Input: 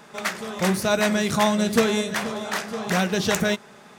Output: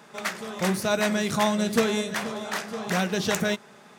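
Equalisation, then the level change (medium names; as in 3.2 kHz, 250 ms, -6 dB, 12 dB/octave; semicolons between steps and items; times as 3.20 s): high-pass 88 Hz; -3.0 dB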